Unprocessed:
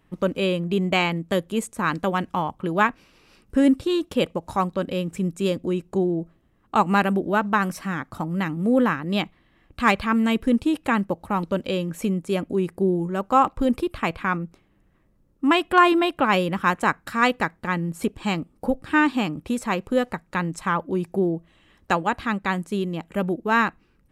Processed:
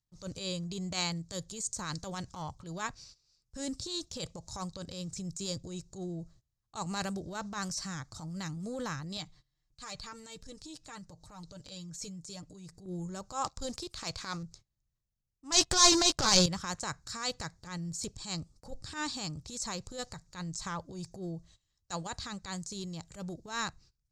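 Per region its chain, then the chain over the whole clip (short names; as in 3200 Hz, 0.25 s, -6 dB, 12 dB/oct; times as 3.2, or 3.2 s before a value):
9.17–12.86 comb 6.6 ms, depth 63% + compressor 1.5:1, threshold -45 dBFS
13.44–14.43 low shelf 280 Hz -8 dB + sample leveller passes 1
15.52–16.46 doubler 16 ms -10.5 dB + sample leveller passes 3
whole clip: gate -48 dBFS, range -20 dB; EQ curve 130 Hz 0 dB, 240 Hz -19 dB, 640 Hz -12 dB, 2900 Hz -13 dB, 4400 Hz +11 dB, 6900 Hz +14 dB, 11000 Hz -11 dB; transient shaper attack -12 dB, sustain +3 dB; gain -2 dB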